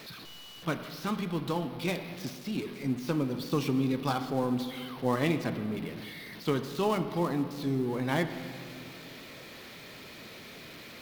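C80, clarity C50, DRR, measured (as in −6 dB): 11.0 dB, 10.0 dB, 8.5 dB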